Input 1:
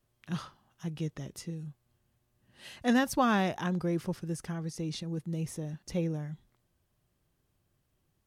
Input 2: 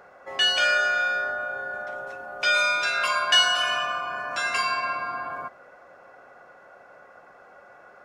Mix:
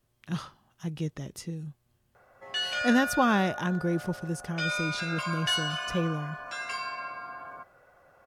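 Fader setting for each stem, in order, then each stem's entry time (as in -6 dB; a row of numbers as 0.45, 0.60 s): +2.5, -9.5 dB; 0.00, 2.15 s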